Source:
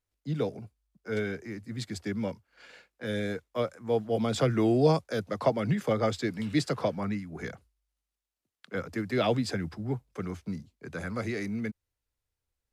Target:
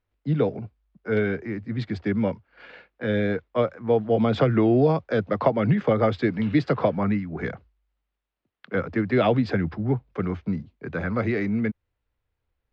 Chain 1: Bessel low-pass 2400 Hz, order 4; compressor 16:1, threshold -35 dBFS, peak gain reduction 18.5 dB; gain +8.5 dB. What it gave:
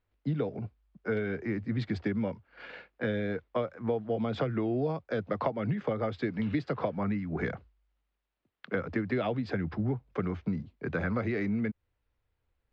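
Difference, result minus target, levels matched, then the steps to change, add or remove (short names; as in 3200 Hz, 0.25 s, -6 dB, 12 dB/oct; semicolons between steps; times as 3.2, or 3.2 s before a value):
compressor: peak gain reduction +11.5 dB
change: compressor 16:1, threshold -23 dBFS, peak gain reduction 7.5 dB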